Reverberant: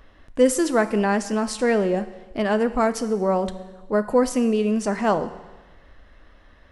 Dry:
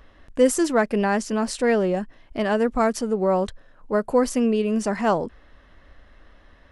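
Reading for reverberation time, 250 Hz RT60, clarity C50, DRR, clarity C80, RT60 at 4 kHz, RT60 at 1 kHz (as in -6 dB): 1.2 s, 1.2 s, 13.5 dB, 11.5 dB, 15.0 dB, 1.2 s, 1.2 s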